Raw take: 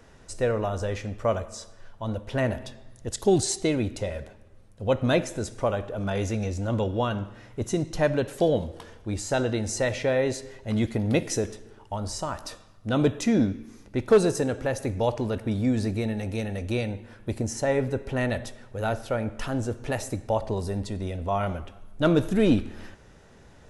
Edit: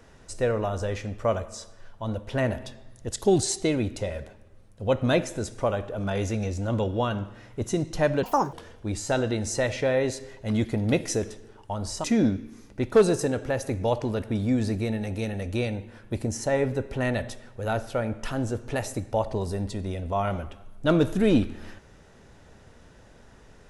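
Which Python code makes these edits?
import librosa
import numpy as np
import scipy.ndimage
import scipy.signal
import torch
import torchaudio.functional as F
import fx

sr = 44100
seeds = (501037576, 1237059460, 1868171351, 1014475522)

y = fx.edit(x, sr, fx.speed_span(start_s=8.23, length_s=0.52, speed=1.73),
    fx.cut(start_s=12.26, length_s=0.94), tone=tone)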